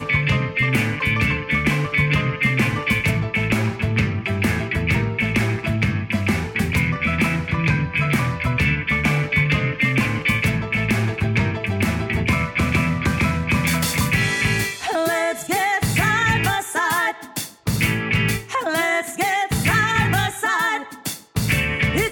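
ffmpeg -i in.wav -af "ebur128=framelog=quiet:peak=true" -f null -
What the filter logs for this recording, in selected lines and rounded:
Integrated loudness:
  I:         -20.0 LUFS
  Threshold: -30.0 LUFS
Loudness range:
  LRA:         1.5 LU
  Threshold: -40.0 LUFS
  LRA low:   -20.8 LUFS
  LRA high:  -19.3 LUFS
True peak:
  Peak:       -4.4 dBFS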